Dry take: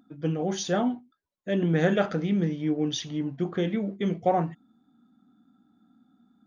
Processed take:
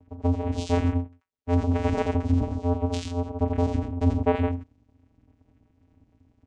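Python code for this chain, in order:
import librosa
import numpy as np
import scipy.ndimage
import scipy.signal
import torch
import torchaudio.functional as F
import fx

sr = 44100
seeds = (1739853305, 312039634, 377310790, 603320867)

p1 = fx.vocoder(x, sr, bands=4, carrier='square', carrier_hz=87.3)
p2 = p1 + fx.echo_single(p1, sr, ms=86, db=-3.5, dry=0)
y = F.gain(torch.from_numpy(p2), 5.5).numpy()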